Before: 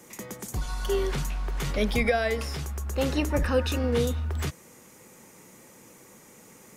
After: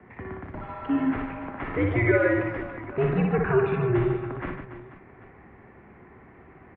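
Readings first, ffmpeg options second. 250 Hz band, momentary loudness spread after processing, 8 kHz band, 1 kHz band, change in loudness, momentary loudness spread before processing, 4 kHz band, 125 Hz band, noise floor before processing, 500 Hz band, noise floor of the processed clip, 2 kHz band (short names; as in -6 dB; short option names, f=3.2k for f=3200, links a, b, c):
+5.0 dB, 16 LU, under -40 dB, +2.5 dB, +2.5 dB, 9 LU, under -15 dB, +2.5 dB, -53 dBFS, +2.5 dB, -51 dBFS, +3.0 dB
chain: -af "aecho=1:1:60|150|285|487.5|791.2:0.631|0.398|0.251|0.158|0.1,highpass=f=190:t=q:w=0.5412,highpass=f=190:t=q:w=1.307,lowpass=f=2.3k:t=q:w=0.5176,lowpass=f=2.3k:t=q:w=0.7071,lowpass=f=2.3k:t=q:w=1.932,afreqshift=-120,volume=2.5dB"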